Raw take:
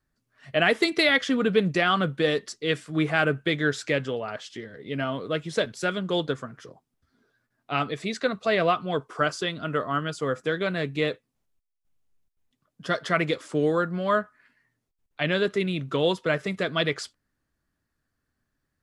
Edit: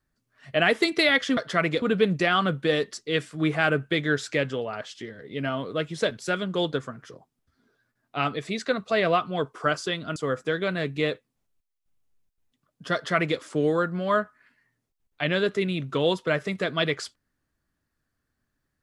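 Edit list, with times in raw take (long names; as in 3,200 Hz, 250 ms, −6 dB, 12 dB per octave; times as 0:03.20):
0:09.71–0:10.15: remove
0:12.93–0:13.38: duplicate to 0:01.37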